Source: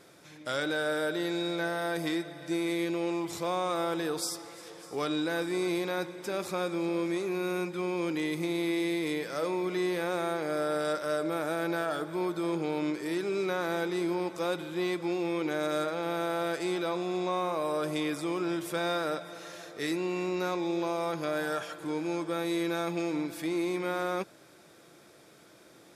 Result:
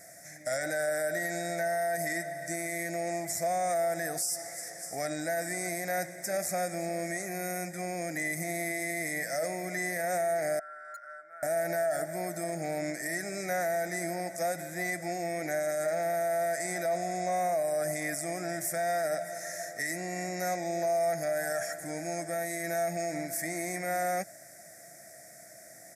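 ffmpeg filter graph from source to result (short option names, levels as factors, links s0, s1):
-filter_complex "[0:a]asettb=1/sr,asplit=3[s0][s1][s2];[s0]atrim=end=10.594[s3];[s1]atrim=start=10.59:end=11.43,asetpts=PTS-STARTPTS,afade=t=in:d=0.004:c=qsin,afade=t=out:st=0.836:d=0.004:c=qsin,bandpass=f=1400:t=q:w=13,asoftclip=type=hard:threshold=0.0188[s4];[s2]atrim=start=11.426[s5];[s3][s4]acrossfade=d=0.004:c1=hsin:c2=qsin[s6];[s6][s5]acrossfade=d=0.004:c1=qsin:c2=hsin,firequalizer=gain_entry='entry(180,0);entry(420,-13);entry(670,14);entry(970,-19);entry(1900,13);entry(2900,-23);entry(5500,10);entry(7800,14)':delay=0.05:min_phase=1,alimiter=limit=0.075:level=0:latency=1:release=44"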